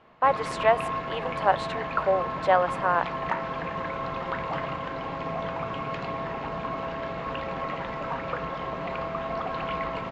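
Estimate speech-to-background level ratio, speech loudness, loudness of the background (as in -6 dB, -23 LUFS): 6.5 dB, -25.5 LUFS, -32.0 LUFS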